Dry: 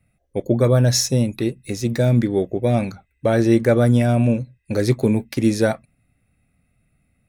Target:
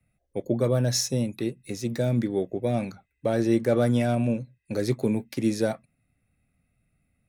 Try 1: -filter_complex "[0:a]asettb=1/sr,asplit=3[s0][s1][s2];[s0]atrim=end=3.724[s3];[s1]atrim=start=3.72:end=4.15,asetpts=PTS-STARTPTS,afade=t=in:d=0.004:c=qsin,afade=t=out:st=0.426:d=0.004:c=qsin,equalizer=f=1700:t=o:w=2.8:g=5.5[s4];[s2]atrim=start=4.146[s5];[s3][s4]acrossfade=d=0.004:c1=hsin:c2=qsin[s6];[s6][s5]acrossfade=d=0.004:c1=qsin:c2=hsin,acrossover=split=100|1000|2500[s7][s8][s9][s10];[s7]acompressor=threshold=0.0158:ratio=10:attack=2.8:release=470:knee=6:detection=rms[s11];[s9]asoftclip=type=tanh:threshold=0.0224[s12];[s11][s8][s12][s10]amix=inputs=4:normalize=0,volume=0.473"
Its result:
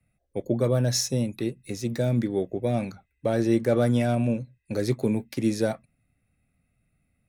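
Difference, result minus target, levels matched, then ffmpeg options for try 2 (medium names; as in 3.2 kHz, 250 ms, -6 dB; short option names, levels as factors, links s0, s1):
compression: peak gain reduction -8 dB
-filter_complex "[0:a]asettb=1/sr,asplit=3[s0][s1][s2];[s0]atrim=end=3.724[s3];[s1]atrim=start=3.72:end=4.15,asetpts=PTS-STARTPTS,afade=t=in:d=0.004:c=qsin,afade=t=out:st=0.426:d=0.004:c=qsin,equalizer=f=1700:t=o:w=2.8:g=5.5[s4];[s2]atrim=start=4.146[s5];[s3][s4]acrossfade=d=0.004:c1=hsin:c2=qsin[s6];[s6][s5]acrossfade=d=0.004:c1=qsin:c2=hsin,acrossover=split=100|1000|2500[s7][s8][s9][s10];[s7]acompressor=threshold=0.00562:ratio=10:attack=2.8:release=470:knee=6:detection=rms[s11];[s9]asoftclip=type=tanh:threshold=0.0224[s12];[s11][s8][s12][s10]amix=inputs=4:normalize=0,volume=0.473"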